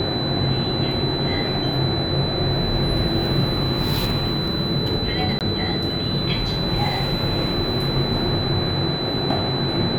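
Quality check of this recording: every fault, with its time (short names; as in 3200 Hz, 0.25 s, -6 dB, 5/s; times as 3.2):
tone 4000 Hz -26 dBFS
5.39–5.41 gap 18 ms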